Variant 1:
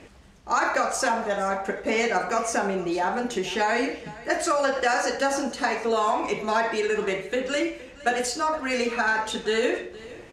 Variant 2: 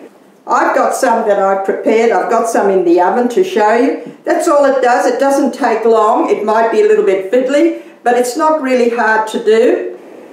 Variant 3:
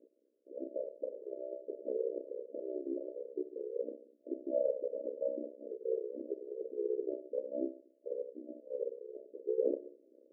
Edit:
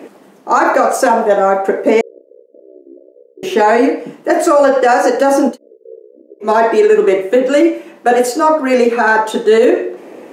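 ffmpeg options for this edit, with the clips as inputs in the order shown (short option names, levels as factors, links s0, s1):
-filter_complex "[2:a]asplit=2[s0][s1];[1:a]asplit=3[s2][s3][s4];[s2]atrim=end=2.012[s5];[s0]atrim=start=2.008:end=3.432[s6];[s3]atrim=start=3.428:end=5.58[s7];[s1]atrim=start=5.48:end=6.5[s8];[s4]atrim=start=6.4[s9];[s5][s6]acrossfade=d=0.004:c1=hsin:c2=hsin[s10];[s10][s7]acrossfade=d=0.004:c1=hsin:c2=hsin[s11];[s11][s8]acrossfade=d=0.1:c1=tri:c2=tri[s12];[s12][s9]acrossfade=d=0.1:c1=tri:c2=tri"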